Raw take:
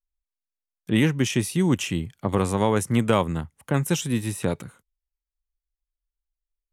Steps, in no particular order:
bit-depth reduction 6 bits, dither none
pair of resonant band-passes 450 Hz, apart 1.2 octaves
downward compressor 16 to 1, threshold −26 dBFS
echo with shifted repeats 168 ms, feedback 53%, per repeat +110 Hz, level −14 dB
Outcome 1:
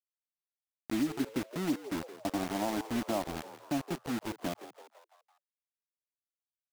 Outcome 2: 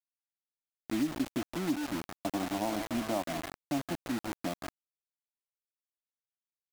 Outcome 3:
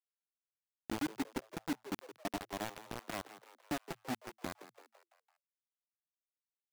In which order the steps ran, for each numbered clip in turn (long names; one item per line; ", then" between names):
pair of resonant band-passes, then bit-depth reduction, then downward compressor, then echo with shifted repeats
echo with shifted repeats, then pair of resonant band-passes, then bit-depth reduction, then downward compressor
downward compressor, then pair of resonant band-passes, then bit-depth reduction, then echo with shifted repeats